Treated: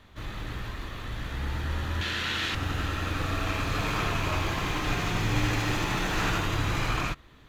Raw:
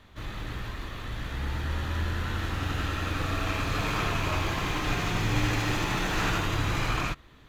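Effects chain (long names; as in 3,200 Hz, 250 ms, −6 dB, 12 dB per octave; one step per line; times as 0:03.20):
0:02.01–0:02.55: meter weighting curve D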